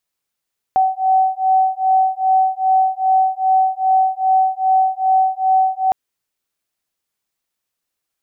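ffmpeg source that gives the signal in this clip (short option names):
-f lavfi -i "aevalsrc='0.168*(sin(2*PI*757*t)+sin(2*PI*759.5*t))':d=5.16:s=44100"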